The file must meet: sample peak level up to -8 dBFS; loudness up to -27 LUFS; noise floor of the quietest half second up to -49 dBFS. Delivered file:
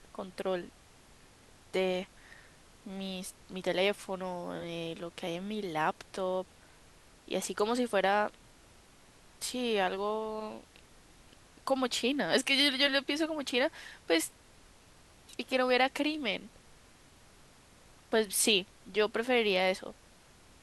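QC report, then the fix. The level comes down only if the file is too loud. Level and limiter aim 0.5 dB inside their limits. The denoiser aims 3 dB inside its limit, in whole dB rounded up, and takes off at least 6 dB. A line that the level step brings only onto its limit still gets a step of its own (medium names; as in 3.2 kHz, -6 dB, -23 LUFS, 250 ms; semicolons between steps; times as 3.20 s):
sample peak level -13.5 dBFS: pass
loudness -31.5 LUFS: pass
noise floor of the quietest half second -59 dBFS: pass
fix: none needed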